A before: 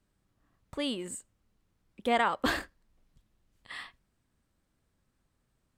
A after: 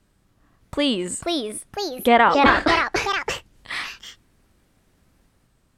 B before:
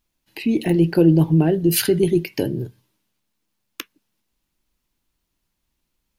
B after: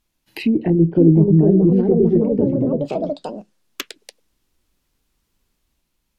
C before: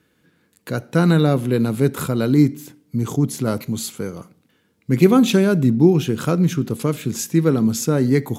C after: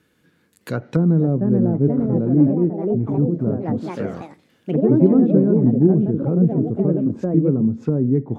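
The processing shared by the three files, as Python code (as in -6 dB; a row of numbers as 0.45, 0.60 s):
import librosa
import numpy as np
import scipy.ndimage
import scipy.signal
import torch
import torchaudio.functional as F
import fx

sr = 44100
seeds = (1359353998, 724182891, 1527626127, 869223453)

y = fx.echo_pitch(x, sr, ms=610, semitones=3, count=3, db_per_echo=-3.0)
y = fx.env_lowpass_down(y, sr, base_hz=410.0, full_db=-15.0)
y = y * 10.0 ** (-1.5 / 20.0) / np.max(np.abs(y))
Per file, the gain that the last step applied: +12.0, +3.0, -0.5 dB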